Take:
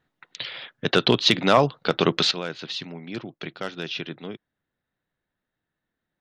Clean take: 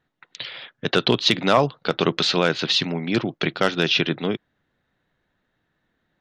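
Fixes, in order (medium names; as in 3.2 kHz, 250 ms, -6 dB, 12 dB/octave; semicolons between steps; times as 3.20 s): trim 0 dB, from 2.31 s +11.5 dB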